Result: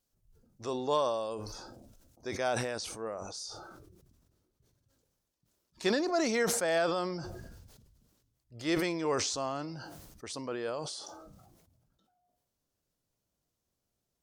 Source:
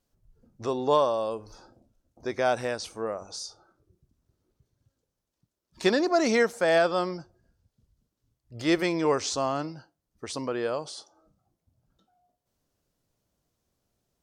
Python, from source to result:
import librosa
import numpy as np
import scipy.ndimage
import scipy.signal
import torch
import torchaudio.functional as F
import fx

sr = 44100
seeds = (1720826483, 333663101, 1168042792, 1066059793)

y = fx.high_shelf(x, sr, hz=3600.0, db=fx.steps((0.0, 9.0), (2.47, 4.0)))
y = fx.sustainer(y, sr, db_per_s=34.0)
y = y * librosa.db_to_amplitude(-7.5)